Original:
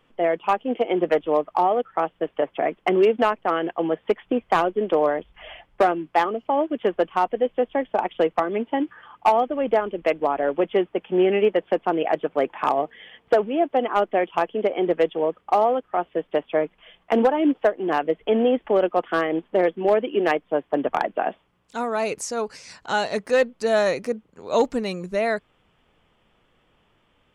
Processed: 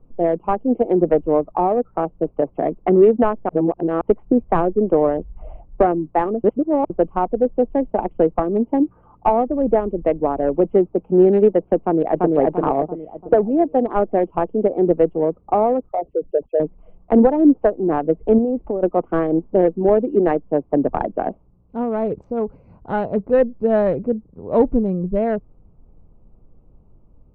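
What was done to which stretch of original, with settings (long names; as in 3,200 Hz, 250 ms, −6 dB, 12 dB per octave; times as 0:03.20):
0:03.49–0:04.01: reverse
0:06.44–0:06.90: reverse
0:11.81–0:12.28: delay throw 340 ms, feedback 45%, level −1 dB
0:15.89–0:16.60: spectral envelope exaggerated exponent 3
0:18.38–0:18.83: downward compressor 10 to 1, threshold −22 dBFS
whole clip: adaptive Wiener filter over 25 samples; low-pass filter 2,100 Hz 12 dB per octave; spectral tilt −4.5 dB per octave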